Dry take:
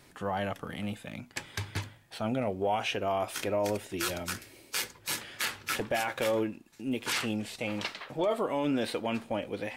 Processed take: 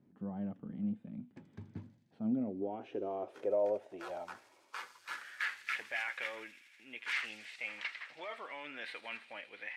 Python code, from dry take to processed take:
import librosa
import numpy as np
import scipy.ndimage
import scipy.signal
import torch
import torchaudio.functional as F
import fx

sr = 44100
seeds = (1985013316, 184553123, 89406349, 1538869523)

y = fx.filter_sweep_bandpass(x, sr, from_hz=210.0, to_hz=2000.0, start_s=2.16, end_s=5.68, q=3.1)
y = fx.echo_wet_highpass(y, sr, ms=81, feedback_pct=83, hz=5100.0, wet_db=-7.0)
y = y * 10.0 ** (1.5 / 20.0)